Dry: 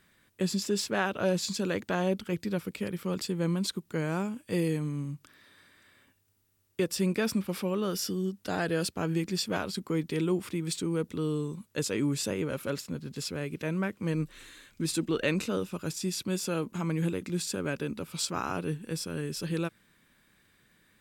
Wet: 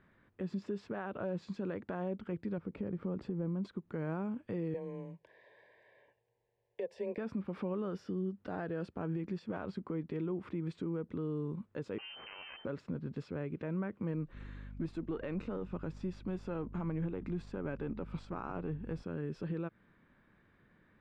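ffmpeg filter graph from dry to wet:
-filter_complex "[0:a]asettb=1/sr,asplit=3[s0][s1][s2];[s0]atrim=end=2.584[s3];[s1]atrim=start=2.58:end=3.65,asetpts=PTS-STARTPTS,afade=t=in:d=0.004:c=qsin,afade=t=out:st=1.066:d=0.004:c=qsin,tiltshelf=f=1200:g=6,acompressor=threshold=0.0126:ratio=2.5:attack=3.2:release=140:knee=1:detection=peak[s4];[s2]atrim=start=3.646[s5];[s3][s4]acrossfade=d=0.004:c1=hsin:c2=qsin[s6];[s6][s5]acrossfade=d=0.004:c1=qsin:c2=hsin,asettb=1/sr,asplit=3[s7][s8][s9];[s7]atrim=end=4.744[s10];[s8]atrim=start=4.74:end=7.18,asetpts=PTS-STARTPTS,afade=t=in:d=0.004:c=qsin,afade=t=out:st=2.436:d=0.004:c=qsin,lowshelf=f=340:t=q:w=3:g=-11,afreqshift=20,asuperstop=centerf=1300:order=8:qfactor=2.4[s11];[s9]atrim=start=7.176[s12];[s10][s11]acrossfade=d=0.004:c1=hsin:c2=qsin[s13];[s13][s12]acrossfade=d=0.004:c1=qsin:c2=hsin,asettb=1/sr,asplit=3[s14][s15][s16];[s14]atrim=end=11.984[s17];[s15]atrim=start=11.98:end=12.65,asetpts=PTS-STARTPTS,afade=t=in:d=0.004:c=qsin,afade=t=out:st=0.666:d=0.004:c=qsin,equalizer=f=120:w=5:g=-12.5,aeval=exprs='max(val(0),0)':c=same,lowpass=f=2600:t=q:w=0.5098,lowpass=f=2600:t=q:w=0.6013,lowpass=f=2600:t=q:w=0.9,lowpass=f=2600:t=q:w=2.563,afreqshift=-3100[s18];[s16]atrim=start=12.646[s19];[s17][s18]acrossfade=d=0.004:c1=hsin:c2=qsin[s20];[s20][s19]acrossfade=d=0.004:c1=qsin:c2=hsin,asettb=1/sr,asplit=3[s21][s22][s23];[s21]atrim=end=14.334[s24];[s22]atrim=start=14.33:end=19.03,asetpts=PTS-STARTPTS,afade=t=in:d=0.004:c=qsin,afade=t=out:st=4.696:d=0.004:c=qsin,aeval=exprs='if(lt(val(0),0),0.708*val(0),val(0))':c=same,aeval=exprs='val(0)+0.00447*(sin(2*PI*50*n/s)+sin(2*PI*2*50*n/s)/2+sin(2*PI*3*50*n/s)/3+sin(2*PI*4*50*n/s)/4+sin(2*PI*5*50*n/s)/5)':c=same[s25];[s23]atrim=start=19.026[s26];[s24][s25]acrossfade=d=0.004:c1=hsin:c2=qsin[s27];[s27][s26]acrossfade=d=0.004:c1=qsin:c2=hsin,acompressor=threshold=0.0178:ratio=2.5,alimiter=level_in=2:limit=0.0631:level=0:latency=1:release=97,volume=0.501,lowpass=1400,volume=1.19"

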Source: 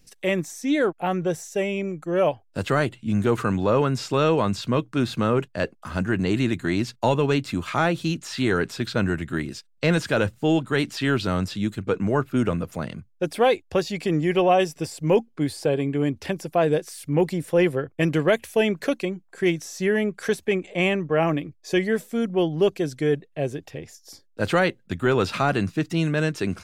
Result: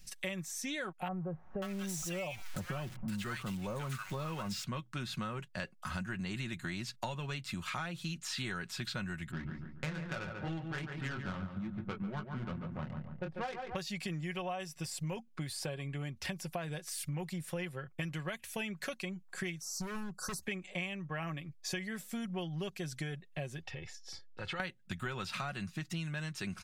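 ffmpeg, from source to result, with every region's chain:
-filter_complex "[0:a]asettb=1/sr,asplit=3[s0][s1][s2];[s0]atrim=end=1.084[s3];[s1]atrim=start=1.08:end=4.64,asetpts=PTS-STARTPTS,afade=t=in:d=0.004:c=qsin,afade=t=out:st=3.556:d=0.004:c=qsin,aeval=exprs='val(0)+0.5*0.0251*sgn(val(0))':c=same,acrossover=split=1100[s4][s5];[s5]adelay=540[s6];[s4][s6]amix=inputs=2:normalize=0,atrim=end_sample=156996[s7];[s2]atrim=start=4.636[s8];[s3][s7]acrossfade=d=0.004:c1=hsin:c2=qsin[s9];[s9][s8]acrossfade=d=0.004:c1=qsin:c2=hsin,asettb=1/sr,asplit=3[s10][s11][s12];[s10]atrim=end=9.314[s13];[s11]atrim=start=9.31:end=13.76,asetpts=PTS-STARTPTS,afade=t=in:d=0.004:c=qsin,afade=t=out:st=4.446:d=0.004:c=qsin,flanger=delay=18.5:depth=7.9:speed=2.4,adynamicsmooth=sensitivity=1.5:basefreq=570,asplit=2[s14][s15];[s15]adelay=142,lowpass=f=2200:p=1,volume=0.422,asplit=2[s16][s17];[s17]adelay=142,lowpass=f=2200:p=1,volume=0.42,asplit=2[s18][s19];[s19]adelay=142,lowpass=f=2200:p=1,volume=0.42,asplit=2[s20][s21];[s21]adelay=142,lowpass=f=2200:p=1,volume=0.42,asplit=2[s22][s23];[s23]adelay=142,lowpass=f=2200:p=1,volume=0.42[s24];[s14][s16][s18][s20][s22][s24]amix=inputs=6:normalize=0,atrim=end_sample=196245[s25];[s12]atrim=start=13.756[s26];[s13][s25]acrossfade=d=0.004:c1=hsin:c2=qsin[s27];[s27][s26]acrossfade=d=0.004:c1=qsin:c2=hsin,asettb=1/sr,asplit=3[s28][s29][s30];[s28]atrim=end=19.614[s31];[s29]atrim=start=19.61:end=20.42,asetpts=PTS-STARTPTS,afade=t=in:d=0.004:c=qsin,afade=t=out:st=0.806:d=0.004:c=qsin,asuperstop=centerf=2500:order=12:qfactor=0.86,volume=21.1,asoftclip=hard,volume=0.0473[s32];[s30]atrim=start=20.416[s33];[s31][s32]acrossfade=d=0.004:c1=hsin:c2=qsin[s34];[s34][s33]acrossfade=d=0.004:c1=qsin:c2=hsin,asettb=1/sr,asplit=3[s35][s36][s37];[s35]atrim=end=23.624[s38];[s36]atrim=start=23.62:end=24.6,asetpts=PTS-STARTPTS,afade=t=in:d=0.004:c=qsin,afade=t=out:st=0.976:d=0.004:c=qsin,aecho=1:1:2.3:0.54,atrim=end_sample=43218,acompressor=threshold=0.0158:ratio=3:attack=3.2:release=140:knee=1:detection=peak,lowpass=4100[s39];[s37]atrim=start=24.596[s40];[s38][s39]acrossfade=d=0.004:c1=hsin:c2=qsin[s41];[s41][s40]acrossfade=d=0.004:c1=qsin:c2=hsin,equalizer=f=390:t=o:w=1.7:g=-14.5,aecho=1:1:5.4:0.45,acompressor=threshold=0.0126:ratio=10,volume=1.26"

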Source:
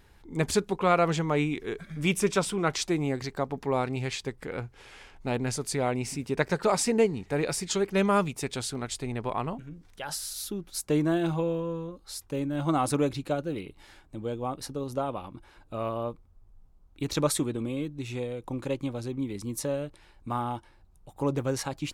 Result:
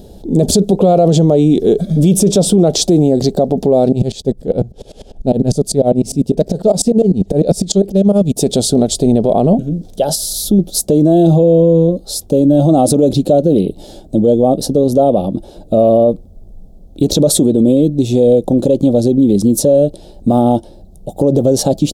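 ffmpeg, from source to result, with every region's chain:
-filter_complex "[0:a]asettb=1/sr,asplit=3[s0][s1][s2];[s0]atrim=end=3.924[s3];[s1]atrim=start=3.92:end=8.37,asetpts=PTS-STARTPTS,afade=t=in:d=0.004:c=qsin,afade=t=out:st=4.446:d=0.004:c=qsin,lowshelf=f=120:g=9.5,volume=5.96,asoftclip=hard,volume=0.168,aeval=exprs='val(0)*pow(10,-24*if(lt(mod(-10*n/s,1),2*abs(-10)/1000),1-mod(-10*n/s,1)/(2*abs(-10)/1000),(mod(-10*n/s,1)-2*abs(-10)/1000)/(1-2*abs(-10)/1000))/20)':c=same[s4];[s2]atrim=start=8.366[s5];[s3][s4]acrossfade=d=0.004:c1=hsin:c2=qsin[s6];[s6][s5]acrossfade=d=0.004:c1=qsin:c2=hsin,asettb=1/sr,asplit=3[s7][s8][s9];[s7]atrim=end=10.154[s10];[s8]atrim=start=10.15:end=10.59,asetpts=PTS-STARTPTS,afade=t=in:d=0.004:c=qsin,afade=t=out:st=0.436:d=0.004:c=qsin,asubboost=boost=10.5:cutoff=230,acompressor=threshold=0.0224:ratio=6:attack=3.2:release=140:knee=1:detection=peak[s11];[s9]atrim=start=10.586[s12];[s10][s11]acrossfade=d=0.004:c1=hsin:c2=qsin[s13];[s13][s12]acrossfade=d=0.004:c1=qsin:c2=hsin,firequalizer=gain_entry='entry(130,0);entry(190,11);entry(290,5);entry(640,10);entry(1000,-17);entry(2100,-25);entry(3400,-3);entry(13000,-1)':delay=0.05:min_phase=1,alimiter=level_in=11.2:limit=0.891:release=50:level=0:latency=1,volume=0.841"

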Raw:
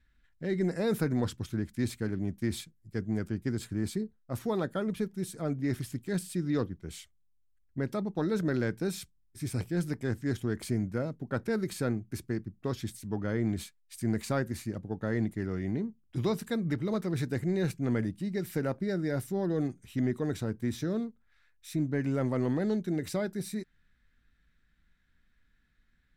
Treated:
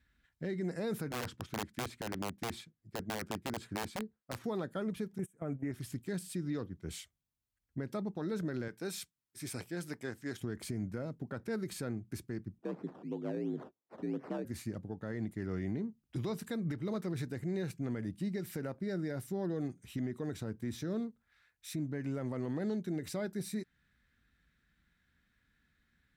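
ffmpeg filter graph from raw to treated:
-filter_complex "[0:a]asettb=1/sr,asplit=3[s0][s1][s2];[s0]atrim=end=1.094[s3];[s1]atrim=start=1.09:end=4.44,asetpts=PTS-STARTPTS,afade=t=in:d=0.004:c=qsin,afade=t=out:st=3.346:d=0.004:c=qsin,lowpass=f=2600:p=1,lowshelf=f=130:g=-9,aeval=exprs='(mod(22.4*val(0)+1,2)-1)/22.4':c=same[s4];[s2]atrim=start=4.436[s5];[s3][s4]acrossfade=d=0.004:c1=hsin:c2=qsin[s6];[s6][s5]acrossfade=d=0.004:c1=qsin:c2=hsin,asettb=1/sr,asplit=3[s7][s8][s9];[s7]atrim=end=5.184[s10];[s8]atrim=start=5.18:end=5.72,asetpts=PTS-STARTPTS,afade=t=in:d=0.004:c=qsin,afade=t=out:st=0.536:d=0.004:c=qsin,agate=range=0.0562:threshold=0.0158:ratio=16:release=100:detection=peak,asuperstop=centerf=4400:order=4:qfactor=1,acontrast=86[s11];[s9]atrim=start=5.716[s12];[s10][s11]acrossfade=d=0.004:c1=hsin:c2=qsin[s13];[s13][s12]acrossfade=d=0.004:c1=qsin:c2=hsin,asettb=1/sr,asplit=3[s14][s15][s16];[s14]atrim=end=8.684[s17];[s15]atrim=start=8.68:end=10.41,asetpts=PTS-STARTPTS,afade=t=in:d=0.004:c=qsin,afade=t=out:st=1.726:d=0.004:c=qsin,highpass=f=170:p=1,lowshelf=f=370:g=-8[s18];[s16]atrim=start=10.406[s19];[s17][s18]acrossfade=d=0.004:c1=hsin:c2=qsin[s20];[s20][s19]acrossfade=d=0.004:c1=qsin:c2=hsin,asettb=1/sr,asplit=3[s21][s22][s23];[s21]atrim=end=12.584[s24];[s22]atrim=start=12.58:end=14.45,asetpts=PTS-STARTPTS,afade=t=in:d=0.004:c=qsin,afade=t=out:st=1.866:d=0.004:c=qsin,acrusher=samples=17:mix=1:aa=0.000001:lfo=1:lforange=10.2:lforate=2.9,bandpass=f=300:t=q:w=0.64,afreqshift=57[s25];[s23]atrim=start=14.446[s26];[s24][s25]acrossfade=d=0.004:c1=hsin:c2=qsin[s27];[s27][s26]acrossfade=d=0.004:c1=qsin:c2=hsin,highpass=60,alimiter=level_in=1.68:limit=0.0631:level=0:latency=1:release=266,volume=0.596"

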